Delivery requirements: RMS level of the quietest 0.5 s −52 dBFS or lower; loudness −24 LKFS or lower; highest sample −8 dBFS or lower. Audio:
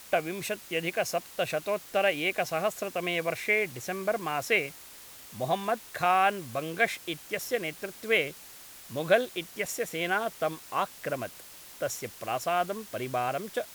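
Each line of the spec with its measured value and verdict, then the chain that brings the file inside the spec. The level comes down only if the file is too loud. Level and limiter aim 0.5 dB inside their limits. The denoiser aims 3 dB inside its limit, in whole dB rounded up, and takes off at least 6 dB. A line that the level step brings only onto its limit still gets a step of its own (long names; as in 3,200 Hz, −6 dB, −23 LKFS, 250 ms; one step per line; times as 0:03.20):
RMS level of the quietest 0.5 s −48 dBFS: out of spec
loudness −30.0 LKFS: in spec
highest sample −10.0 dBFS: in spec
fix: broadband denoise 7 dB, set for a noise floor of −48 dBFS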